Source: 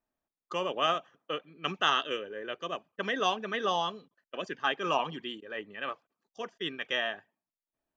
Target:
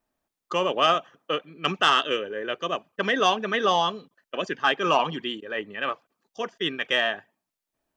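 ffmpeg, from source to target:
-af "asoftclip=type=tanh:threshold=0.178,volume=2.51"

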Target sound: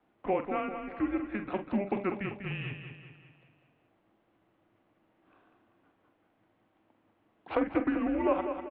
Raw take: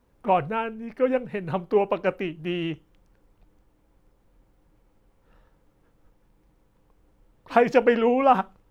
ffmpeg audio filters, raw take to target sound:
-filter_complex "[0:a]acompressor=threshold=0.0251:ratio=2,asplit=2[s0][s1];[s1]adelay=46,volume=0.316[s2];[s0][s2]amix=inputs=2:normalize=0,aecho=1:1:195|390|585|780|975|1170:0.398|0.195|0.0956|0.0468|0.023|0.0112,asettb=1/sr,asplit=3[s3][s4][s5];[s3]atrim=end=7.554[s6];[s4]atrim=start=7.55:end=8.24,asetpts=PTS-STARTPTS,afade=t=in:d=0.004:c=qsin,afade=t=out:st=0.686:d=0.004:c=qsin,adynamicsmooth=sensitivity=1:basefreq=2400[s7];[s5]atrim=start=8.236[s8];[s6][s7]acrossfade=d=0.004:c1=hsin:c2=qsin[s9];[s9][s8]acrossfade=d=0.004:c1=qsin:c2=hsin,highpass=f=390:t=q:w=0.5412,highpass=f=390:t=q:w=1.307,lowpass=f=3600:t=q:w=0.5176,lowpass=f=3600:t=q:w=0.7071,lowpass=f=3600:t=q:w=1.932,afreqshift=-200"

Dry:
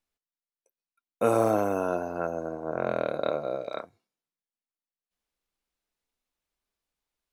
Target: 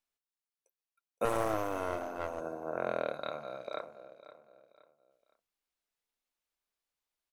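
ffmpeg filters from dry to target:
-filter_complex "[0:a]lowshelf=f=340:g=-8.5,asplit=2[s0][s1];[s1]aecho=0:1:517|1034|1551:0.158|0.0539|0.0183[s2];[s0][s2]amix=inputs=2:normalize=0,asettb=1/sr,asplit=3[s3][s4][s5];[s3]atrim=end=1.254[s6];[s4]atrim=start=1.25:end=2.41,asetpts=PTS-STARTPTS,afade=t=in:d=0.004:c=qsin,afade=t=out:st=1.156:d=0.004:c=qsin,aeval=exprs='clip(val(0),-1,0.0188)':c=same[s7];[s5]atrim=start=2.406[s8];[s6][s7]acrossfade=d=0.004:c1=hsin:c2=qsin[s9];[s9][s8]acrossfade=d=0.004:c1=qsin:c2=hsin,asettb=1/sr,asplit=3[s10][s11][s12];[s10]atrim=end=3.134[s13];[s11]atrim=start=3.13:end=3.67,asetpts=PTS-STARTPTS,afade=t=in:d=0.004:c=qsin,afade=t=out:st=0.536:d=0.004:c=qsin,equalizer=f=430:t=o:w=1.4:g=-9.5[s14];[s12]atrim=start=3.666[s15];[s13][s14]acrossfade=d=0.004:c1=hsin:c2=qsin[s16];[s16][s15]acrossfade=d=0.004:c1=qsin:c2=hsin,volume=0.708"

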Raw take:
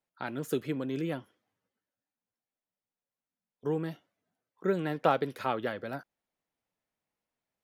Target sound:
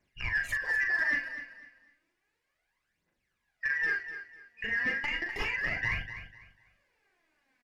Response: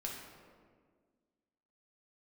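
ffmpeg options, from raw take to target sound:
-filter_complex "[0:a]afftfilt=real='real(if(lt(b,272),68*(eq(floor(b/68),0)*1+eq(floor(b/68),1)*0+eq(floor(b/68),2)*3+eq(floor(b/68),3)*2)+mod(b,68),b),0)':imag='imag(if(lt(b,272),68*(eq(floor(b/68),0)*1+eq(floor(b/68),1)*0+eq(floor(b/68),2)*3+eq(floor(b/68),3)*2)+mod(b,68),b),0)':win_size=2048:overlap=0.75,asplit=2[s0][s1];[s1]volume=9.44,asoftclip=hard,volume=0.106,volume=0.282[s2];[s0][s2]amix=inputs=2:normalize=0,acompressor=threshold=0.02:ratio=10,alimiter=level_in=2.66:limit=0.0631:level=0:latency=1:release=269,volume=0.376,acontrast=30,aphaser=in_gain=1:out_gain=1:delay=4.6:decay=0.74:speed=0.32:type=triangular,asoftclip=type=tanh:threshold=0.0398,aemphasis=mode=reproduction:type=75fm,asplit=2[s3][s4];[s4]adelay=41,volume=0.473[s5];[s3][s5]amix=inputs=2:normalize=0,asplit=2[s6][s7];[s7]aecho=0:1:249|498|747:0.266|0.0692|0.018[s8];[s6][s8]amix=inputs=2:normalize=0,volume=2"

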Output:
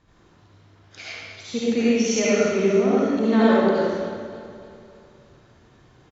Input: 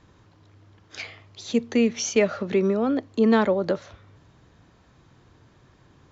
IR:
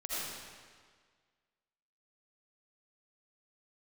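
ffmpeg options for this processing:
-filter_complex "[0:a]aecho=1:1:297|594|891|1188|1485:0.178|0.0925|0.0481|0.025|0.013[s0];[1:a]atrim=start_sample=2205,asetrate=48510,aresample=44100[s1];[s0][s1]afir=irnorm=-1:irlink=0"

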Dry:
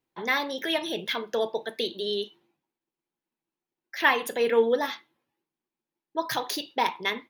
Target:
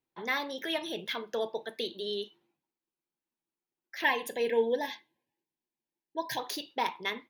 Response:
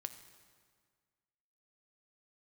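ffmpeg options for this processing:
-filter_complex "[0:a]asettb=1/sr,asplit=3[s0][s1][s2];[s0]atrim=end=4.044[s3];[s1]atrim=start=4.04:end=6.39,asetpts=PTS-STARTPTS,afade=t=in:d=0.004:c=qsin,afade=t=out:st=2.346:d=0.004:c=qsin,asuperstop=centerf=1300:order=20:qfactor=2.9[s4];[s2]atrim=start=6.386[s5];[s3][s4]acrossfade=d=0.004:c1=hsin:c2=qsin[s6];[s6][s5]acrossfade=d=0.004:c1=qsin:c2=hsin,volume=0.531"

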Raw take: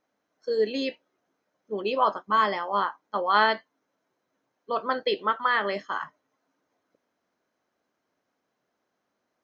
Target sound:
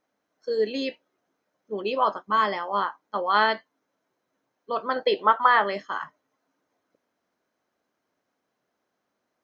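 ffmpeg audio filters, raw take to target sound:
-filter_complex "[0:a]asettb=1/sr,asplit=3[s0][s1][s2];[s0]atrim=end=4.964[s3];[s1]atrim=start=4.96:end=5.64,asetpts=PTS-STARTPTS,afade=t=in:d=0.004:c=qsin,afade=t=out:st=0.676:d=0.004:c=qsin,equalizer=f=820:w=1.1:g=10[s4];[s2]atrim=start=5.636[s5];[s3][s4]acrossfade=d=0.004:c1=hsin:c2=qsin[s6];[s6][s5]acrossfade=d=0.004:c1=qsin:c2=hsin"

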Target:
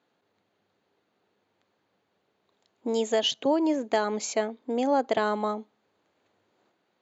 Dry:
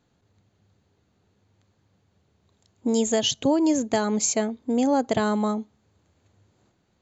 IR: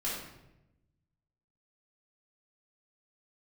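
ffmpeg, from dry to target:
-filter_complex "[0:a]asettb=1/sr,asplit=3[s0][s1][s2];[s0]atrim=end=3.344[s3];[s1]atrim=start=3.34:end=3.83,asetpts=PTS-STARTPTS,afade=t=in:d=0.004:c=qsin,afade=t=out:st=0.486:d=0.004:c=qsin,acrossover=split=2700[s4][s5];[s5]acompressor=threshold=0.0112:ratio=4:attack=1:release=60[s6];[s4][s6]amix=inputs=2:normalize=0[s7];[s2]atrim=start=3.826[s8];[s3][s7]acrossfade=d=0.004:c1=hsin:c2=qsin[s9];[s9][s8]acrossfade=d=0.004:c1=qsin:c2=hsin,highpass=360,lowpass=4000"

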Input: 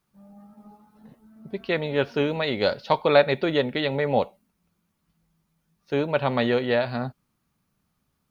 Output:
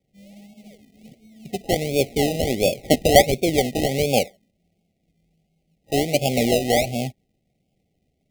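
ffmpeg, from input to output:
-af "acrusher=samples=31:mix=1:aa=0.000001:lfo=1:lforange=18.6:lforate=1.4,afftfilt=real='re*(1-between(b*sr/4096,810,1900))':imag='im*(1-between(b*sr/4096,810,1900))':win_size=4096:overlap=0.75,volume=1.5"

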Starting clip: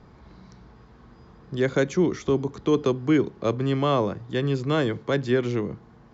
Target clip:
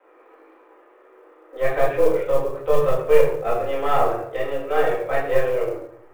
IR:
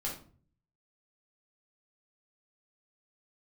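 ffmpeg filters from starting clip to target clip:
-filter_complex "[0:a]highpass=f=240:t=q:w=0.5412,highpass=f=240:t=q:w=1.307,lowpass=f=2700:t=q:w=0.5176,lowpass=f=2700:t=q:w=0.7071,lowpass=f=2700:t=q:w=1.932,afreqshift=140,aeval=exprs='0.316*(cos(1*acos(clip(val(0)/0.316,-1,1)))-cos(1*PI/2))+0.0794*(cos(2*acos(clip(val(0)/0.316,-1,1)))-cos(2*PI/2))+0.00562*(cos(3*acos(clip(val(0)/0.316,-1,1)))-cos(3*PI/2))+0.00447*(cos(5*acos(clip(val(0)/0.316,-1,1)))-cos(5*PI/2))':c=same[s0];[1:a]atrim=start_sample=2205,asetrate=26019,aresample=44100[s1];[s0][s1]afir=irnorm=-1:irlink=0,acrusher=bits=8:mode=log:mix=0:aa=0.000001,volume=0.668"

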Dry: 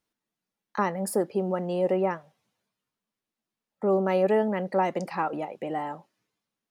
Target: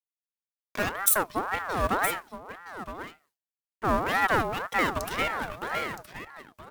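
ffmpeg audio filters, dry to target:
-filter_complex "[0:a]aeval=exprs='if(lt(val(0),0),0.251*val(0),val(0))':c=same,aemphasis=mode=production:type=75fm,agate=range=0.0224:threshold=0.00224:ratio=3:detection=peak,equalizer=f=71:w=0.35:g=-6,asplit=2[s0][s1];[s1]aecho=0:1:968:0.251[s2];[s0][s2]amix=inputs=2:normalize=0,aeval=exprs='val(0)*sin(2*PI*1000*n/s+1000*0.4/1.9*sin(2*PI*1.9*n/s))':c=same,volume=1.88"

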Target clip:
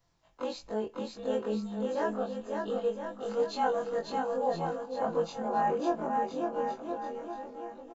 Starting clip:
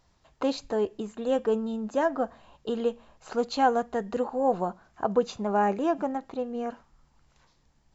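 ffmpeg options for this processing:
-af "afftfilt=real='re':imag='-im':win_size=2048:overlap=0.75,aecho=1:1:6:0.35,aecho=1:1:550|1018|1415|1753|2040:0.631|0.398|0.251|0.158|0.1,volume=0.75"

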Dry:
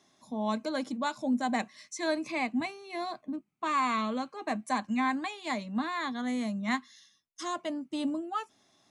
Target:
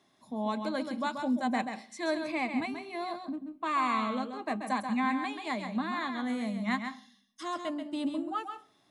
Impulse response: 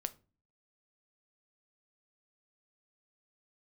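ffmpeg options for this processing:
-filter_complex "[0:a]equalizer=f=6200:t=o:w=0.58:g=-9.5,asplit=2[s0][s1];[1:a]atrim=start_sample=2205,asetrate=27783,aresample=44100,adelay=134[s2];[s1][s2]afir=irnorm=-1:irlink=0,volume=0.398[s3];[s0][s3]amix=inputs=2:normalize=0,volume=0.891"

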